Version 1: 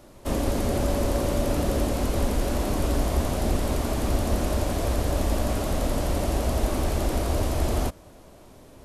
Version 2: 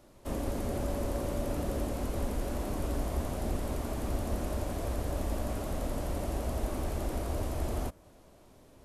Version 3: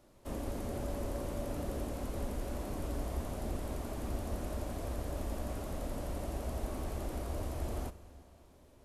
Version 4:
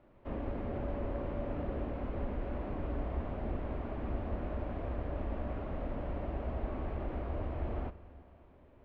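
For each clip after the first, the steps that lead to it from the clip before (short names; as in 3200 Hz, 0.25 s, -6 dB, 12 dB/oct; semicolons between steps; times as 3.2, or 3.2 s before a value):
dynamic EQ 4300 Hz, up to -4 dB, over -49 dBFS, Q 0.73; gain -8.5 dB
reverb RT60 2.7 s, pre-delay 31 ms, DRR 14 dB; gain -5 dB
LPF 2600 Hz 24 dB/oct; gain +1 dB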